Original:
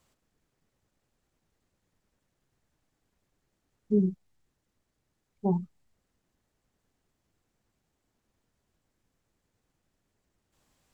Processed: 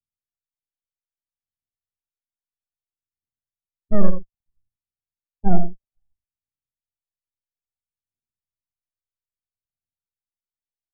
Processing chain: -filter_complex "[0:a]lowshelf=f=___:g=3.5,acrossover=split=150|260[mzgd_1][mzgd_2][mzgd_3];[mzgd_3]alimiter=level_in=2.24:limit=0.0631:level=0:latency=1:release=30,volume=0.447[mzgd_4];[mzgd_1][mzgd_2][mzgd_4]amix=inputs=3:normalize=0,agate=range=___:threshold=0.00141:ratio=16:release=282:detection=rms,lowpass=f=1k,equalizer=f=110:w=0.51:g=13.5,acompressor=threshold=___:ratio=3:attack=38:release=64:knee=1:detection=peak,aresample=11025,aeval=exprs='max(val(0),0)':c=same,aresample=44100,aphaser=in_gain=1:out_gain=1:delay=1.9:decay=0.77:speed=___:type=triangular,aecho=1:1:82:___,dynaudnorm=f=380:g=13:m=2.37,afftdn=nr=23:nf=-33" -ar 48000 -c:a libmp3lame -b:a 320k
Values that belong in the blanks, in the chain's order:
260, 0.0631, 0.178, 0.61, 0.422